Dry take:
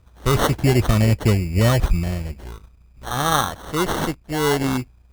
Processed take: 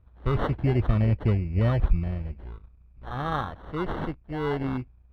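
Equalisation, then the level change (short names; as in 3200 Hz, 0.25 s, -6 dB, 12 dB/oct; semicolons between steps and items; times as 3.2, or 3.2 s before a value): air absorption 430 m; low shelf 88 Hz +6 dB; -7.5 dB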